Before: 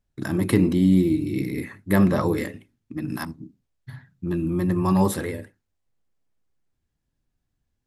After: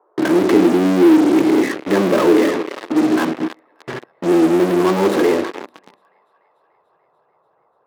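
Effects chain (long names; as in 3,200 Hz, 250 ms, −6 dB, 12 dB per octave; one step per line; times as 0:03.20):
feedback echo with a high-pass in the loop 292 ms, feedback 78%, high-pass 660 Hz, level −17 dB
on a send at −20.5 dB: convolution reverb RT60 0.80 s, pre-delay 3 ms
on the sum: noise in a band 390–1,200 Hz −59 dBFS
high-frequency loss of the air 400 metres
in parallel at −3.5 dB: fuzz pedal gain 45 dB, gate −45 dBFS
on the sum: high-pass filter sweep 340 Hz → 160 Hz, 0:05.51–0:06.09
level −1.5 dB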